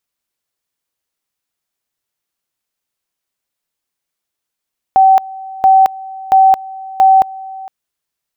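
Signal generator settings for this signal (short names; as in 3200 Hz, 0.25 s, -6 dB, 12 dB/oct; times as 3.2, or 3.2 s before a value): two-level tone 767 Hz -4 dBFS, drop 21 dB, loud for 0.22 s, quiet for 0.46 s, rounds 4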